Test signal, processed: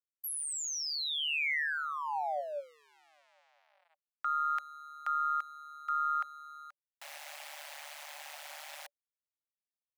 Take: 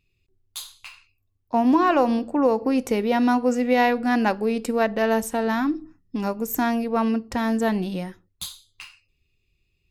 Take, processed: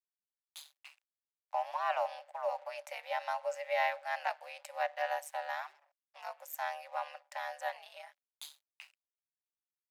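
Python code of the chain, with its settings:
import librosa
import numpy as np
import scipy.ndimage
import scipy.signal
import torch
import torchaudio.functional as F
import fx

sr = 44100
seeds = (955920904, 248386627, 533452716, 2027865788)

y = np.sign(x) * np.maximum(np.abs(x) - 10.0 ** (-47.0 / 20.0), 0.0)
y = y * np.sin(2.0 * np.pi * 74.0 * np.arange(len(y)) / sr)
y = scipy.signal.sosfilt(scipy.signal.cheby1(6, 6, 560.0, 'highpass', fs=sr, output='sos'), y)
y = y * 10.0 ** (-5.5 / 20.0)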